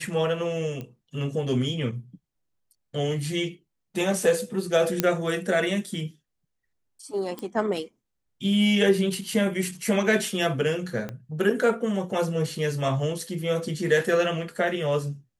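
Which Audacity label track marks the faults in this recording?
0.810000	0.810000	click −23 dBFS
5.000000	5.000000	click −6 dBFS
7.390000	7.390000	click −20 dBFS
11.090000	11.090000	click −20 dBFS

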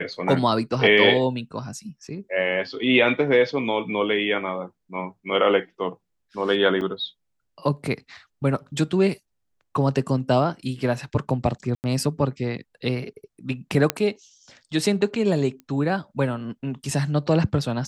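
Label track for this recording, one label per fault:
6.810000	6.810000	drop-out 4.1 ms
11.750000	11.840000	drop-out 89 ms
13.900000	13.900000	click −4 dBFS
15.600000	15.600000	click −27 dBFS

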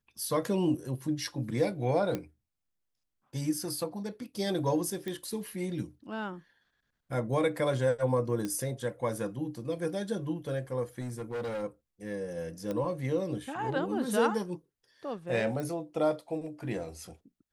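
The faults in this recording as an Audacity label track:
2.150000	2.150000	click −19 dBFS
5.080000	5.080000	click −23 dBFS
8.450000	8.450000	click −21 dBFS
11.010000	11.640000	clipping −32 dBFS
12.710000	12.710000	click −22 dBFS
15.600000	15.600000	click −24 dBFS

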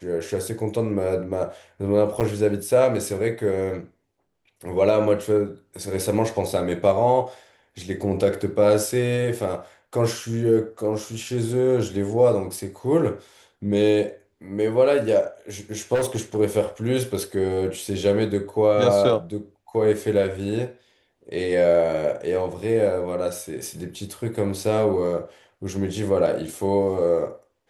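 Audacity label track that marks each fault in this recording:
2.200000	2.210000	drop-out 7.7 ms
15.940000	16.380000	clipping −18.5 dBFS

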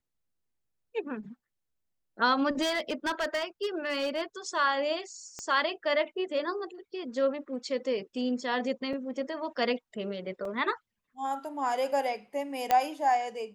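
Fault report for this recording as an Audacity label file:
2.610000	4.220000	clipping −25.5 dBFS
5.390000	5.390000	click −24 dBFS
8.930000	8.930000	drop-out 4.5 ms
10.450000	10.450000	drop-out 2.9 ms
12.710000	12.710000	click −11 dBFS

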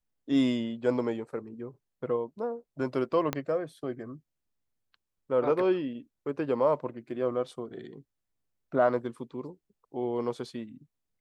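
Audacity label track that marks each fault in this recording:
3.330000	3.330000	click −14 dBFS

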